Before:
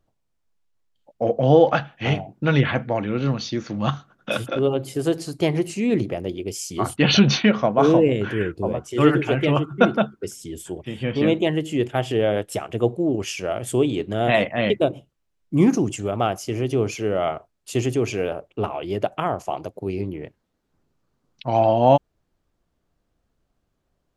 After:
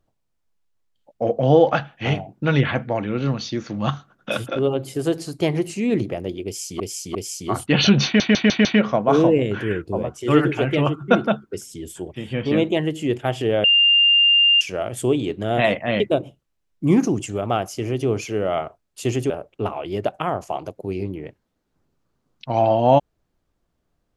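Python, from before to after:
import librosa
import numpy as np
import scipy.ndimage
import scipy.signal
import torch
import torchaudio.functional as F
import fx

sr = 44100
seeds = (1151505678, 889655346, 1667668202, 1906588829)

y = fx.edit(x, sr, fx.repeat(start_s=6.45, length_s=0.35, count=3),
    fx.stutter(start_s=7.35, slice_s=0.15, count=5),
    fx.bleep(start_s=12.34, length_s=0.97, hz=2800.0, db=-11.5),
    fx.cut(start_s=18.0, length_s=0.28), tone=tone)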